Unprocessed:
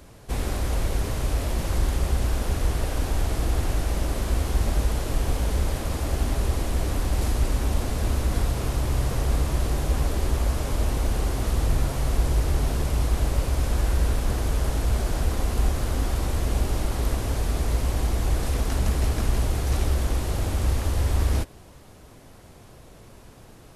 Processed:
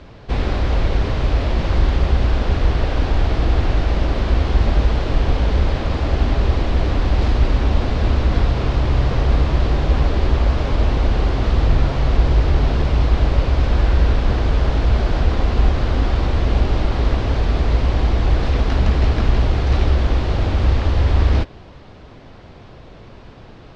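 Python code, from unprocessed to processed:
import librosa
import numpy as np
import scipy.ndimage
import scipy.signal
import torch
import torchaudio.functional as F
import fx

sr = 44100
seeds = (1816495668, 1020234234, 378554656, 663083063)

y = scipy.signal.sosfilt(scipy.signal.butter(4, 4400.0, 'lowpass', fs=sr, output='sos'), x)
y = F.gain(torch.from_numpy(y), 7.5).numpy()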